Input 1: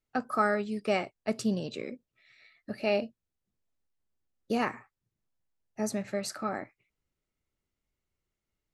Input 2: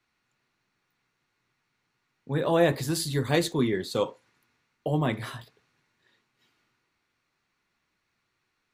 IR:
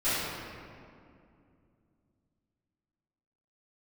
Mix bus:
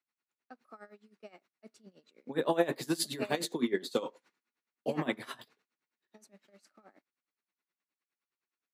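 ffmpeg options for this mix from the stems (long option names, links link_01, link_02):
-filter_complex "[0:a]adelay=350,volume=-7.5dB[link_01];[1:a]alimiter=limit=-14.5dB:level=0:latency=1:release=247,volume=1.5dB,asplit=2[link_02][link_03];[link_03]apad=whole_len=400697[link_04];[link_01][link_04]sidechaingate=range=-12dB:threshold=-55dB:ratio=16:detection=peak[link_05];[link_05][link_02]amix=inputs=2:normalize=0,agate=range=-14dB:threshold=-60dB:ratio=16:detection=peak,highpass=frequency=200:width=0.5412,highpass=frequency=200:width=1.3066,aeval=exprs='val(0)*pow(10,-19*(0.5-0.5*cos(2*PI*9.6*n/s))/20)':channel_layout=same"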